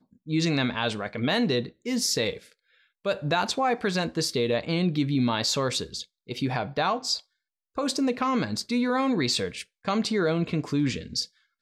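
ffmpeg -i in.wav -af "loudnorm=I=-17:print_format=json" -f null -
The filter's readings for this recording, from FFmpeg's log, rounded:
"input_i" : "-26.8",
"input_tp" : "-12.6",
"input_lra" : "1.6",
"input_thresh" : "-37.0",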